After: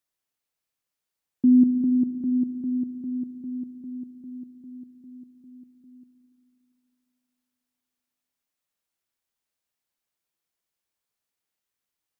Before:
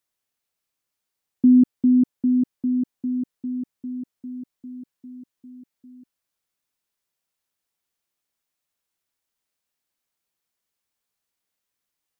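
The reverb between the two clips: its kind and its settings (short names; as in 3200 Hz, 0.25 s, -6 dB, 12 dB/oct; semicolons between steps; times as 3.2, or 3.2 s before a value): spring tank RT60 3 s, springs 36/57 ms, chirp 55 ms, DRR 8 dB; gain -3.5 dB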